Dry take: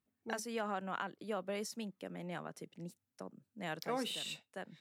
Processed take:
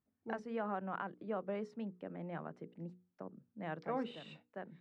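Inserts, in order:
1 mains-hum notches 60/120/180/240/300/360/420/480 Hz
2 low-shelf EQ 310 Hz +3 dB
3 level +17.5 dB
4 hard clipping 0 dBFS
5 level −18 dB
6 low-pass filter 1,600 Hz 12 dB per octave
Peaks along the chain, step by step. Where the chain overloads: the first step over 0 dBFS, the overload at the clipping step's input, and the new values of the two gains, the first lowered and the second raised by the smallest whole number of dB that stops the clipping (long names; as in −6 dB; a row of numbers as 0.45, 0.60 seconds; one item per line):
−20.5, −20.0, −2.5, −2.5, −20.5, −23.5 dBFS
no step passes full scale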